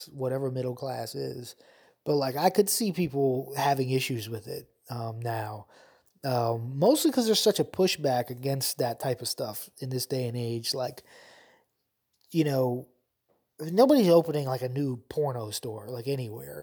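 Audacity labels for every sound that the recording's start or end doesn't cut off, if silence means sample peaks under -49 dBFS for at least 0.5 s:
12.210000	12.850000	sound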